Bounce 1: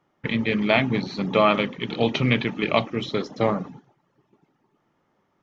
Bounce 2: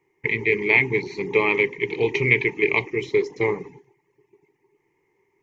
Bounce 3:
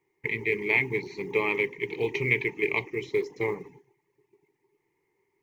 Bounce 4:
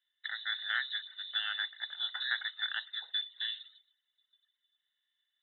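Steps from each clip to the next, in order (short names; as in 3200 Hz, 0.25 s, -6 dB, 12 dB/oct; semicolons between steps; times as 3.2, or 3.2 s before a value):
EQ curve 140 Hz 0 dB, 230 Hz -11 dB, 410 Hz +14 dB, 610 Hz -17 dB, 940 Hz +5 dB, 1400 Hz -18 dB, 2100 Hz +15 dB, 3400 Hz -8 dB, 7000 Hz +6 dB; gain -3 dB
companded quantiser 8-bit; gain -6.5 dB
inverted band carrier 3900 Hz; Bessel high-pass 830 Hz, order 4; gain -8.5 dB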